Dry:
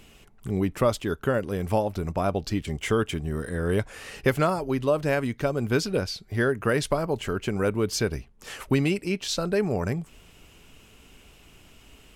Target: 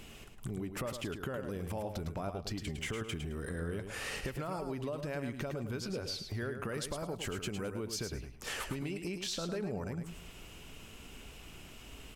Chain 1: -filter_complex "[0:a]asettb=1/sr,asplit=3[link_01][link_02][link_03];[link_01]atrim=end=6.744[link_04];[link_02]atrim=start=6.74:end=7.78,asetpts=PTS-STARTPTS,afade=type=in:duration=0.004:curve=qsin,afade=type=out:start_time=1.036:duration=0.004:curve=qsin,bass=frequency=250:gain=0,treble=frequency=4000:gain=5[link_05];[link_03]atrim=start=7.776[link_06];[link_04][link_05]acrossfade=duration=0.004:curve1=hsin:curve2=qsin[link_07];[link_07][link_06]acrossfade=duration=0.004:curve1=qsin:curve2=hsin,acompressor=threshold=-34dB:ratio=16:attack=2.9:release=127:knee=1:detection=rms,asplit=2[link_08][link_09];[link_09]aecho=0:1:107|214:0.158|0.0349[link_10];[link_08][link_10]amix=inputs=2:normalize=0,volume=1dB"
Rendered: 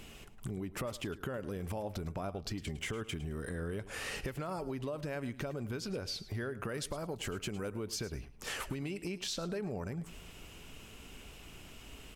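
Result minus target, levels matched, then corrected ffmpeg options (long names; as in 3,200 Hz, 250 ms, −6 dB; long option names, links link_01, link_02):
echo-to-direct −8.5 dB
-filter_complex "[0:a]asettb=1/sr,asplit=3[link_01][link_02][link_03];[link_01]atrim=end=6.744[link_04];[link_02]atrim=start=6.74:end=7.78,asetpts=PTS-STARTPTS,afade=type=in:duration=0.004:curve=qsin,afade=type=out:start_time=1.036:duration=0.004:curve=qsin,bass=frequency=250:gain=0,treble=frequency=4000:gain=5[link_05];[link_03]atrim=start=7.776[link_06];[link_04][link_05]acrossfade=duration=0.004:curve1=hsin:curve2=qsin[link_07];[link_07][link_06]acrossfade=duration=0.004:curve1=qsin:curve2=hsin,acompressor=threshold=-34dB:ratio=16:attack=2.9:release=127:knee=1:detection=rms,asplit=2[link_08][link_09];[link_09]aecho=0:1:107|214|321:0.422|0.0928|0.0204[link_10];[link_08][link_10]amix=inputs=2:normalize=0,volume=1dB"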